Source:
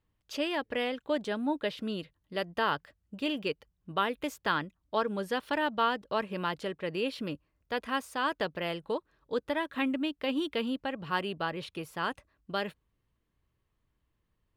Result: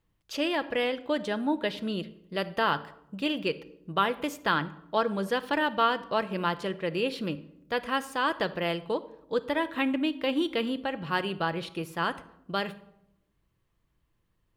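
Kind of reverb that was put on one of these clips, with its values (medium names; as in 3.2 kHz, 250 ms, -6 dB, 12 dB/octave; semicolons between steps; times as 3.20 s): simulated room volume 2300 m³, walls furnished, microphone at 0.76 m; trim +3 dB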